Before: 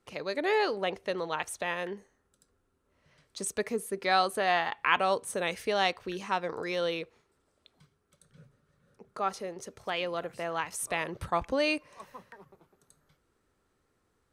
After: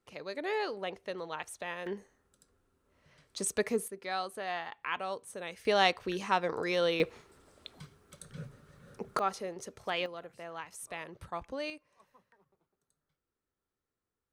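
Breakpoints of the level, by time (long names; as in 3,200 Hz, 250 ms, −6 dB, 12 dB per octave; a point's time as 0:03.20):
−6.5 dB
from 0:01.86 +1 dB
from 0:03.88 −10 dB
from 0:05.65 +1.5 dB
from 0:07.00 +12 dB
from 0:09.19 −1 dB
from 0:10.06 −10 dB
from 0:11.70 −16.5 dB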